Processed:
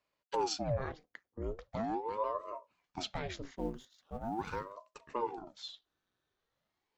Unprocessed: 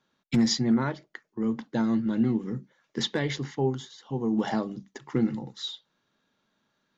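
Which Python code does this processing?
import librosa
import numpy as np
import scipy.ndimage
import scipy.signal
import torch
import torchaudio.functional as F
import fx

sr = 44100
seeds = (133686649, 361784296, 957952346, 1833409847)

y = fx.law_mismatch(x, sr, coded='A', at=(3.56, 4.73))
y = fx.ring_lfo(y, sr, carrier_hz=460.0, swing_pct=80, hz=0.41)
y = y * 10.0 ** (-8.0 / 20.0)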